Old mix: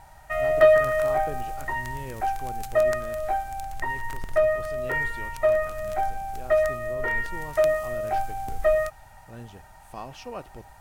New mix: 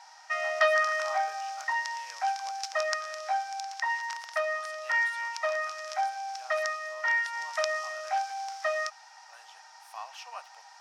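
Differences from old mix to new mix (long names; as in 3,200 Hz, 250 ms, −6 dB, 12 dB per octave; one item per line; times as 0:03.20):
background: add low-pass with resonance 5,400 Hz, resonance Q 6.2
master: add Butterworth high-pass 770 Hz 36 dB per octave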